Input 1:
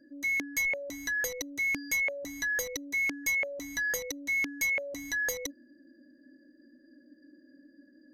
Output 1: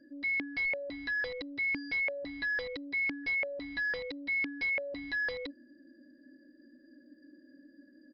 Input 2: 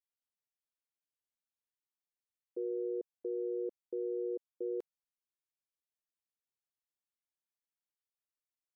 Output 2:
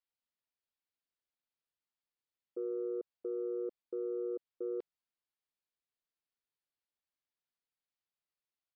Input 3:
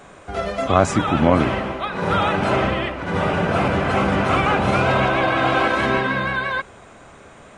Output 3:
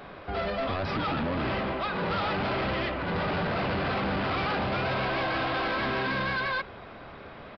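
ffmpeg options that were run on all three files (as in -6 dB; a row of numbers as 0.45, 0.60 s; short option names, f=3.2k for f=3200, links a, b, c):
-af "alimiter=limit=-11.5dB:level=0:latency=1:release=42,aresample=16000,asoftclip=type=tanh:threshold=-26.5dB,aresample=44100,aresample=11025,aresample=44100"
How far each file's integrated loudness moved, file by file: -2.5, -0.5, -9.5 LU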